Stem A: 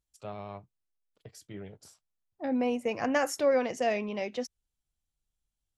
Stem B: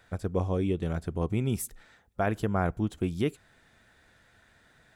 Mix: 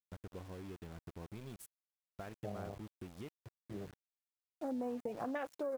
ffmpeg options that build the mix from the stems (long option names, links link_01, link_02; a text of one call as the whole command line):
ffmpeg -i stem1.wav -i stem2.wav -filter_complex "[0:a]afwtdn=0.02,acompressor=threshold=-37dB:ratio=2,adelay=2200,volume=-1.5dB[link_01];[1:a]acompressor=threshold=-37dB:ratio=3,volume=-10.5dB[link_02];[link_01][link_02]amix=inputs=2:normalize=0,aeval=exprs='val(0)*gte(abs(val(0)),0.00282)':channel_layout=same,acompressor=threshold=-36dB:ratio=4" out.wav